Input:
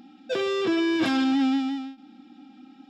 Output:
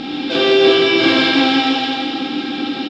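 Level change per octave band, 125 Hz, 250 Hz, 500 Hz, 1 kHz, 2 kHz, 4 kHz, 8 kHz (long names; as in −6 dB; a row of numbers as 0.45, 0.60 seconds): +14.0 dB, +7.5 dB, +14.0 dB, +13.5 dB, +15.5 dB, +18.5 dB, can't be measured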